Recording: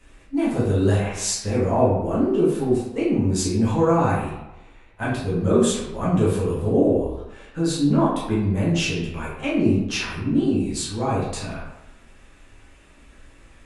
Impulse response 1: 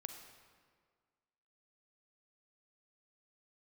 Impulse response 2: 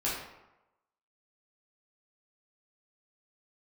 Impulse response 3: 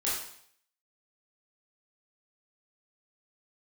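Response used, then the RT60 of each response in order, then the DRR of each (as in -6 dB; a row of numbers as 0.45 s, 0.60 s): 2; 1.8 s, 0.95 s, 0.65 s; 5.5 dB, -8.0 dB, -8.5 dB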